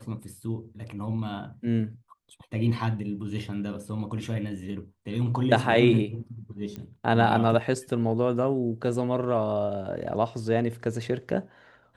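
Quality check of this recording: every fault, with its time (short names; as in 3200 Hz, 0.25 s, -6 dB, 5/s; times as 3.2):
6.76 pop -24 dBFS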